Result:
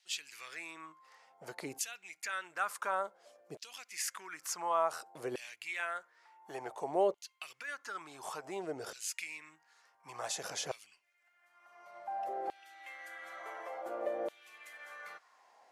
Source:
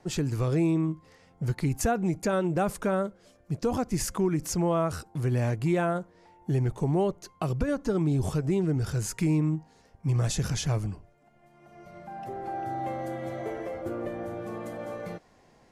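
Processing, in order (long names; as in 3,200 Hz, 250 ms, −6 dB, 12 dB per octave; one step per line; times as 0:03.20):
0:05.79–0:06.75: dynamic equaliser 530 Hz, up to +7 dB, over −42 dBFS, Q 0.89
auto-filter high-pass saw down 0.56 Hz 480–3,300 Hz
level −5 dB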